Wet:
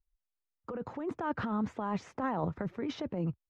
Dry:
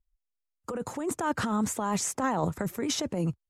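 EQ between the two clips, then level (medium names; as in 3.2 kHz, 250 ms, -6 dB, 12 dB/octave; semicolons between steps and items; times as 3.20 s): distance through air 270 m; treble shelf 8.9 kHz -12 dB; -4.0 dB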